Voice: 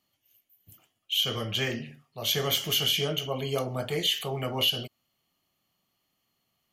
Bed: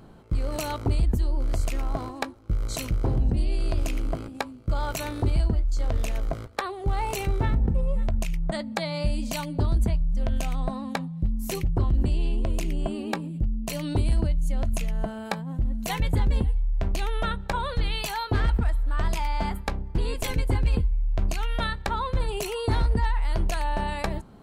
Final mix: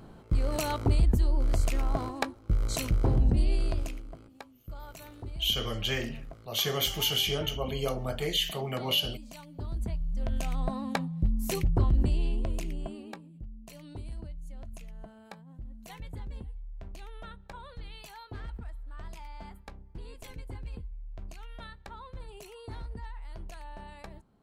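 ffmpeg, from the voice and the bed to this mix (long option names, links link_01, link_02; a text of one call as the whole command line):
ffmpeg -i stem1.wav -i stem2.wav -filter_complex "[0:a]adelay=4300,volume=-2dB[link_01];[1:a]volume=15dB,afade=type=out:start_time=3.52:duration=0.51:silence=0.158489,afade=type=in:start_time=9.52:duration=1.45:silence=0.16788,afade=type=out:start_time=11.83:duration=1.41:silence=0.149624[link_02];[link_01][link_02]amix=inputs=2:normalize=0" out.wav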